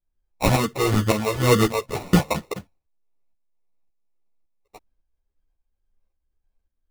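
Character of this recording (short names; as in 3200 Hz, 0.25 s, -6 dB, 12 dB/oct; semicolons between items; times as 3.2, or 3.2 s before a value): phasing stages 4, 2.1 Hz, lowest notch 220–2200 Hz; aliases and images of a low sample rate 1600 Hz, jitter 0%; tremolo saw up 1.8 Hz, depth 60%; a shimmering, thickened sound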